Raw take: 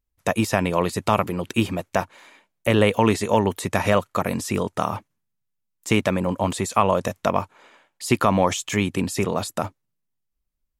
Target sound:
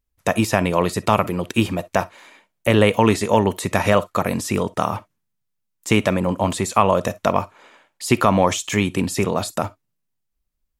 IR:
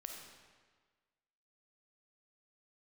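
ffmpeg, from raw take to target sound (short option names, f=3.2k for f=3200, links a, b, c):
-filter_complex "[0:a]asplit=2[a][b];[1:a]atrim=start_sample=2205,atrim=end_sample=3087[c];[b][c]afir=irnorm=-1:irlink=0,volume=-3.5dB[d];[a][d]amix=inputs=2:normalize=0"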